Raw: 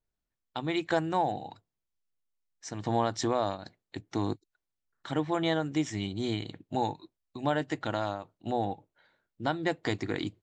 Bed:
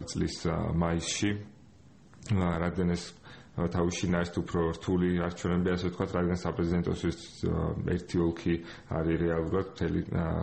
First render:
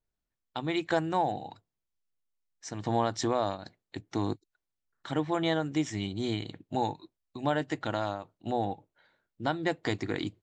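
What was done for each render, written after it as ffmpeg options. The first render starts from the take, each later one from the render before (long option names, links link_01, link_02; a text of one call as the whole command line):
ffmpeg -i in.wav -af anull out.wav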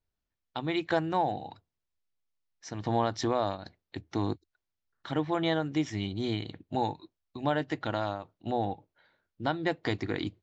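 ffmpeg -i in.wav -af "lowpass=frequency=5900:width=0.5412,lowpass=frequency=5900:width=1.3066,equalizer=frequency=80:width_type=o:width=0.29:gain=9" out.wav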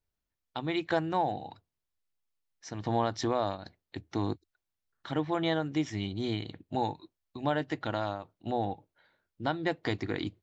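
ffmpeg -i in.wav -af "volume=-1dB" out.wav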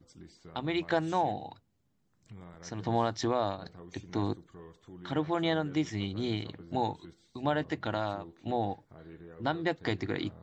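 ffmpeg -i in.wav -i bed.wav -filter_complex "[1:a]volume=-21dB[link_01];[0:a][link_01]amix=inputs=2:normalize=0" out.wav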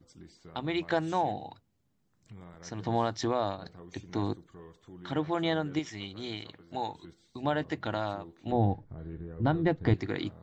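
ffmpeg -i in.wav -filter_complex "[0:a]asettb=1/sr,asplit=3[link_01][link_02][link_03];[link_01]atrim=end=5.794[link_04];[link_02]atrim=start=5.79:end=6.95,asetpts=PTS-STARTPTS,afade=type=in:duration=0.004:curve=qsin,afade=type=out:start_time=1.156:duration=0.004:curve=qsin,lowshelf=frequency=470:gain=-10[link_05];[link_03]atrim=start=6.946[link_06];[link_04][link_05]acrossfade=duration=0.004:curve1=hsin:curve2=qsin[link_07];[link_07][link_06]acrossfade=duration=0.004:curve1=qsin:curve2=hsin,asettb=1/sr,asplit=3[link_08][link_09][link_10];[link_08]atrim=end=8.524[link_11];[link_09]atrim=start=8.52:end=9.94,asetpts=PTS-STARTPTS,afade=type=in:duration=0.004:curve=qsin,afade=type=out:start_time=1.416:duration=0.004:curve=qsin,aemphasis=mode=reproduction:type=riaa[link_12];[link_10]atrim=start=9.936[link_13];[link_11][link_12]acrossfade=duration=0.004:curve1=hsin:curve2=qsin[link_14];[link_14][link_13]acrossfade=duration=0.004:curve1=qsin:curve2=hsin" out.wav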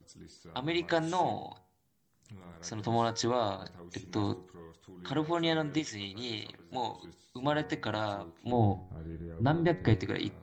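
ffmpeg -i in.wav -af "aemphasis=mode=production:type=cd,bandreject=frequency=91.98:width_type=h:width=4,bandreject=frequency=183.96:width_type=h:width=4,bandreject=frequency=275.94:width_type=h:width=4,bandreject=frequency=367.92:width_type=h:width=4,bandreject=frequency=459.9:width_type=h:width=4,bandreject=frequency=551.88:width_type=h:width=4,bandreject=frequency=643.86:width_type=h:width=4,bandreject=frequency=735.84:width_type=h:width=4,bandreject=frequency=827.82:width_type=h:width=4,bandreject=frequency=919.8:width_type=h:width=4,bandreject=frequency=1011.78:width_type=h:width=4,bandreject=frequency=1103.76:width_type=h:width=4,bandreject=frequency=1195.74:width_type=h:width=4,bandreject=frequency=1287.72:width_type=h:width=4,bandreject=frequency=1379.7:width_type=h:width=4,bandreject=frequency=1471.68:width_type=h:width=4,bandreject=frequency=1563.66:width_type=h:width=4,bandreject=frequency=1655.64:width_type=h:width=4,bandreject=frequency=1747.62:width_type=h:width=4,bandreject=frequency=1839.6:width_type=h:width=4,bandreject=frequency=1931.58:width_type=h:width=4,bandreject=frequency=2023.56:width_type=h:width=4,bandreject=frequency=2115.54:width_type=h:width=4,bandreject=frequency=2207.52:width_type=h:width=4,bandreject=frequency=2299.5:width_type=h:width=4,bandreject=frequency=2391.48:width_type=h:width=4,bandreject=frequency=2483.46:width_type=h:width=4" out.wav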